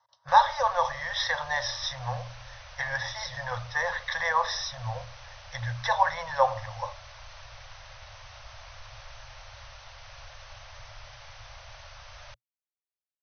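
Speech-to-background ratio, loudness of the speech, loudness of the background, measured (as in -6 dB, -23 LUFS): 18.5 dB, -28.5 LUFS, -47.0 LUFS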